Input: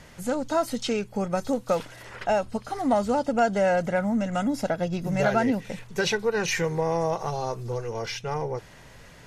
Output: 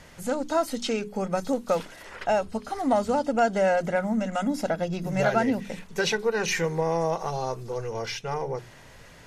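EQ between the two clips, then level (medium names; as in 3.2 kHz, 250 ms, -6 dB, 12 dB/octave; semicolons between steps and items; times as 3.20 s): hum notches 50/100/150/200 Hz; hum notches 60/120/180/240/300/360/420 Hz; 0.0 dB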